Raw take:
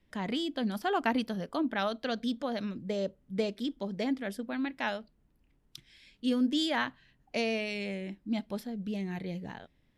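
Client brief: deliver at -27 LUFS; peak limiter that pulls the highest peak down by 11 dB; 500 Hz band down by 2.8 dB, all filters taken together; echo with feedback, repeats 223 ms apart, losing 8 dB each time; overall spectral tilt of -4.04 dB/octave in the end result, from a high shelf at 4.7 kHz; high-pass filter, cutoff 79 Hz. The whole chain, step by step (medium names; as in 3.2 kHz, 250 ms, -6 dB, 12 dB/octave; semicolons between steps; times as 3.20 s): high-pass 79 Hz; peaking EQ 500 Hz -3.5 dB; treble shelf 4.7 kHz -3.5 dB; peak limiter -26.5 dBFS; feedback delay 223 ms, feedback 40%, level -8 dB; trim +9 dB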